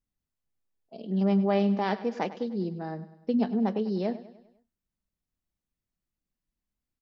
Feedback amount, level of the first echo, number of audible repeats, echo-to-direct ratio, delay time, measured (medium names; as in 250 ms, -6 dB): 50%, -15.5 dB, 4, -14.5 dB, 100 ms